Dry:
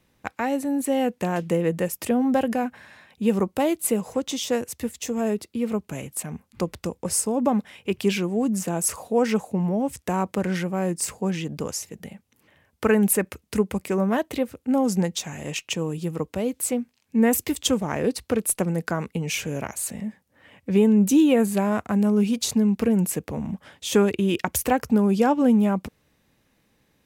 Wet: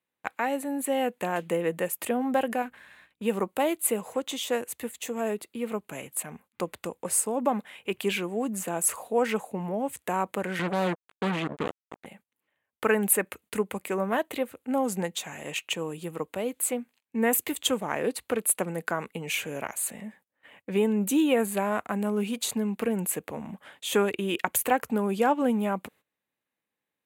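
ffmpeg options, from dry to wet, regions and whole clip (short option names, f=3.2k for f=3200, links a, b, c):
-filter_complex "[0:a]asettb=1/sr,asplit=3[a][b][c];[a]atrim=end=2.624[d];[b]atrim=start=2.62:end=3.22,asetpts=PTS-STARTPTS,afade=t=in:d=0.004:c=qsin,afade=t=out:st=0.596:d=0.004:c=qsin,aeval=exprs='if(lt(val(0),0),0.447*val(0),val(0))':c=same,equalizer=f=740:w=1.5:g=-5.5,aeval=exprs='val(0)+0.00126*(sin(2*PI*60*n/s)+sin(2*PI*2*60*n/s)/2+sin(2*PI*3*60*n/s)/3+sin(2*PI*4*60*n/s)/4+sin(2*PI*5*60*n/s)/5)':c=same[e];[c]atrim=start=3.216[f];[d][e]acrossfade=d=0.004:c1=hsin:c2=qsin[g];[g][f]acrossfade=d=0.004:c1=qsin:c2=hsin,asettb=1/sr,asplit=3[h][i][j];[h]atrim=end=10.594[k];[i]atrim=start=10.59:end=12.06,asetpts=PTS-STARTPTS,afade=t=in:d=0.004:c=qsin,afade=t=out:st=1.466:d=0.004:c=qsin,aemphasis=mode=reproduction:type=bsi,acrossover=split=3300[l][m];[m]acompressor=threshold=-46dB:ratio=4:attack=1:release=60[n];[l][n]amix=inputs=2:normalize=0,acrusher=bits=3:mix=0:aa=0.5[o];[j]atrim=start=12.056[p];[k][o]acrossfade=d=0.004:c1=hsin:c2=qsin[q];[q][p]acrossfade=d=0.004:c1=qsin:c2=hsin,highpass=f=640:p=1,agate=range=-18dB:threshold=-55dB:ratio=16:detection=peak,equalizer=f=5.4k:w=2.3:g=-13.5,volume=1dB"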